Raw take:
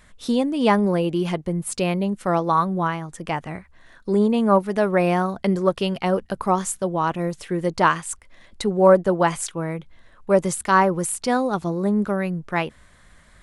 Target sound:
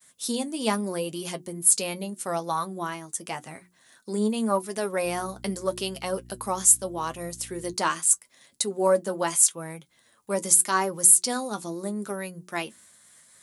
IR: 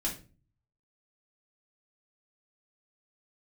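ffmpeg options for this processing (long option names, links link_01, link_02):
-filter_complex "[0:a]aemphasis=mode=production:type=50kf,agate=range=-33dB:threshold=-48dB:ratio=3:detection=peak,highpass=190,bass=frequency=250:gain=3,treble=frequency=4000:gain=11,bandreject=frequency=60:width_type=h:width=6,bandreject=frequency=120:width_type=h:width=6,bandreject=frequency=180:width_type=h:width=6,bandreject=frequency=240:width_type=h:width=6,bandreject=frequency=300:width_type=h:width=6,bandreject=frequency=360:width_type=h:width=6,asettb=1/sr,asplit=3[link_01][link_02][link_03];[link_01]atrim=end=5.054[link_04];[link_02]atrim=start=5.05:end=7.74,asetpts=PTS-STARTPTS,afade=type=in:duration=0.004:curve=qsin,afade=type=out:start_time=2.686:duration=0.004:curve=qsin,aeval=exprs='val(0)+0.0126*(sin(2*PI*60*n/s)+sin(2*PI*2*60*n/s)/2+sin(2*PI*3*60*n/s)/3+sin(2*PI*4*60*n/s)/4+sin(2*PI*5*60*n/s)/5)':channel_layout=same[link_05];[link_03]atrim=start=7.736[link_06];[link_04][link_05]acrossfade=duration=0.004:curve1=hsin:curve2=qsin[link_07];[link_07][link_06]acrossfade=duration=0.004:curve1=qsin:curve2=hsin,flanger=delay=7.3:depth=2:regen=49:speed=0.82:shape=sinusoidal,volume=-4.5dB"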